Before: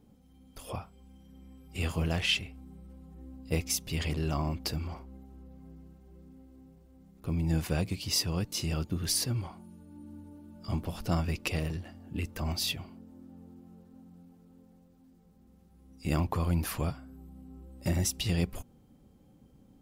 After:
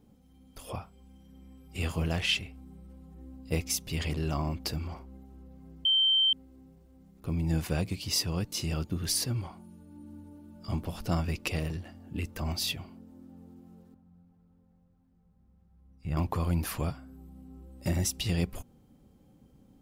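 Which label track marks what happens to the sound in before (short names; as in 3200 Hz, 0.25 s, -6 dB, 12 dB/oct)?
5.850000	6.330000	bleep 3120 Hz -21 dBFS
13.940000	16.170000	EQ curve 140 Hz 0 dB, 280 Hz -13 dB, 930 Hz -6 dB, 1400 Hz -6 dB, 6700 Hz -19 dB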